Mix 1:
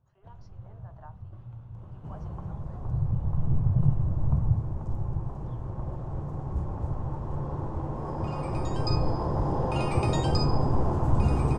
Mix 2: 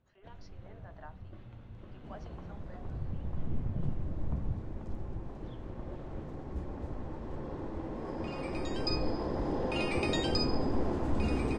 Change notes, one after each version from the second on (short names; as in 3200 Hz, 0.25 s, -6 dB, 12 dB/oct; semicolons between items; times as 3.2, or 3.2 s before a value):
second sound -6.0 dB; master: add graphic EQ 125/250/500/1000/2000/4000 Hz -11/+8/+3/-6/+10/+8 dB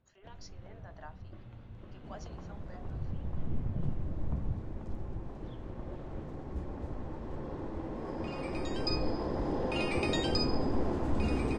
speech: remove air absorption 210 m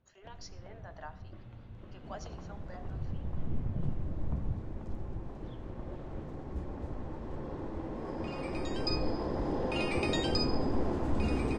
speech: send on